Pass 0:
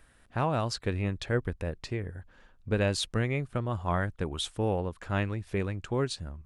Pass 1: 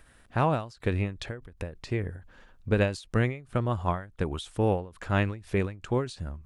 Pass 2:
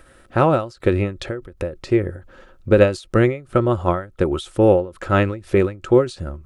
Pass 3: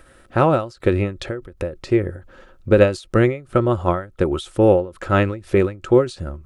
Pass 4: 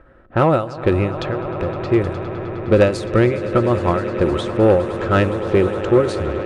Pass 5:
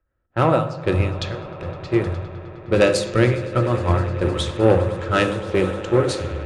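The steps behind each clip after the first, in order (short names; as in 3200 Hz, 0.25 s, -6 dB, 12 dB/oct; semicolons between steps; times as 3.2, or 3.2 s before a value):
ending taper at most 140 dB/s; gain +4 dB
small resonant body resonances 360/530/1300 Hz, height 12 dB, ringing for 50 ms; gain +6 dB
nothing audible
swelling echo 0.103 s, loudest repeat 8, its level -18 dB; low-pass opened by the level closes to 1300 Hz, open at -14.5 dBFS; added harmonics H 5 -21 dB, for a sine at -1 dBFS; gain -1 dB
high shelf 2300 Hz +10 dB; on a send at -7 dB: reverb RT60 1.1 s, pre-delay 3 ms; on the sum: three-band expander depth 70%; gain -5 dB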